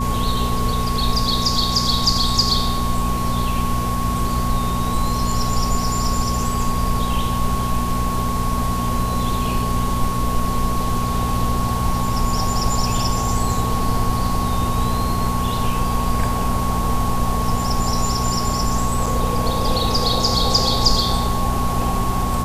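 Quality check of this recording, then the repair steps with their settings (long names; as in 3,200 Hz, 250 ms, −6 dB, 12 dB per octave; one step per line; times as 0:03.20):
mains hum 60 Hz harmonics 4 −24 dBFS
whistle 1,100 Hz −24 dBFS
0:19.06: drop-out 4.9 ms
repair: hum removal 60 Hz, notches 4
notch filter 1,100 Hz, Q 30
repair the gap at 0:19.06, 4.9 ms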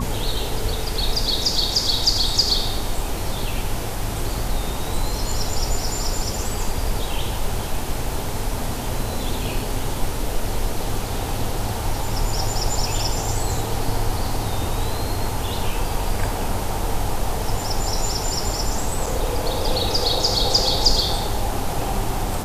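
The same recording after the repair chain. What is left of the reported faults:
none of them is left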